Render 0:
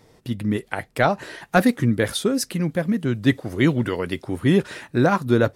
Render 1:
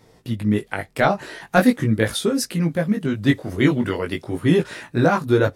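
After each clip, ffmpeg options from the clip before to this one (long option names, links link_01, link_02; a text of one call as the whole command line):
ffmpeg -i in.wav -af "flanger=delay=17.5:depth=3.7:speed=0.42,volume=4dB" out.wav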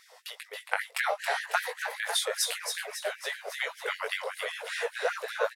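ffmpeg -i in.wav -filter_complex "[0:a]acompressor=threshold=-25dB:ratio=6,asplit=2[link_01][link_02];[link_02]asplit=6[link_03][link_04][link_05][link_06][link_07][link_08];[link_03]adelay=274,afreqshift=73,volume=-6dB[link_09];[link_04]adelay=548,afreqshift=146,volume=-11.7dB[link_10];[link_05]adelay=822,afreqshift=219,volume=-17.4dB[link_11];[link_06]adelay=1096,afreqshift=292,volume=-23dB[link_12];[link_07]adelay=1370,afreqshift=365,volume=-28.7dB[link_13];[link_08]adelay=1644,afreqshift=438,volume=-34.4dB[link_14];[link_09][link_10][link_11][link_12][link_13][link_14]amix=inputs=6:normalize=0[link_15];[link_01][link_15]amix=inputs=2:normalize=0,afftfilt=real='re*gte(b*sr/1024,410*pow(1600/410,0.5+0.5*sin(2*PI*5.1*pts/sr)))':imag='im*gte(b*sr/1024,410*pow(1600/410,0.5+0.5*sin(2*PI*5.1*pts/sr)))':win_size=1024:overlap=0.75,volume=3.5dB" out.wav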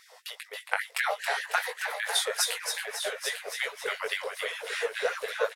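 ffmpeg -i in.wav -filter_complex "[0:a]asubboost=boost=9:cutoff=230,asplit=2[link_01][link_02];[link_02]aecho=0:1:848:0.355[link_03];[link_01][link_03]amix=inputs=2:normalize=0,volume=1.5dB" out.wav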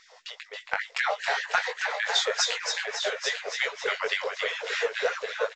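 ffmpeg -i in.wav -filter_complex "[0:a]dynaudnorm=framelen=250:gausssize=7:maxgain=4dB,asplit=2[link_01][link_02];[link_02]asoftclip=type=tanh:threshold=-16dB,volume=-3dB[link_03];[link_01][link_03]amix=inputs=2:normalize=0,volume=-4.5dB" -ar 16000 -c:a pcm_mulaw out.wav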